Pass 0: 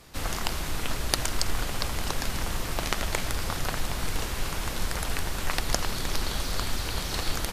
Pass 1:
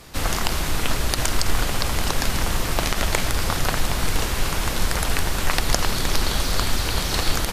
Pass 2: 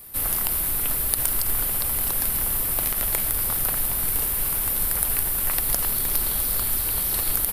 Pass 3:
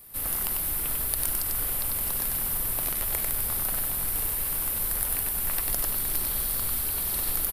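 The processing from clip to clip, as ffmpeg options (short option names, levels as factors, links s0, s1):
-af "alimiter=level_in=2.99:limit=0.891:release=50:level=0:latency=1,volume=0.794"
-af "aexciter=amount=8.8:drive=9:freq=9500,volume=0.335"
-af "aecho=1:1:96:0.708,volume=0.501"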